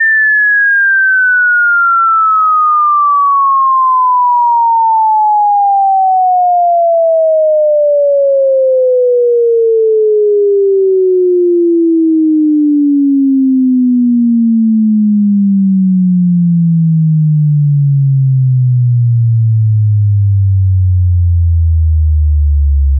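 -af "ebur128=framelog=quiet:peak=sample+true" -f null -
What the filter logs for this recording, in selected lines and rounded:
Integrated loudness:
  I:          -9.2 LUFS
  Threshold: -19.2 LUFS
Loudness range:
  LRA:         2.4 LU
  Threshold: -29.3 LUFS
  LRA low:   -10.2 LUFS
  LRA high:   -7.9 LUFS
Sample peak:
  Peak:       -5.6 dBFS
True peak:
  Peak:       -5.6 dBFS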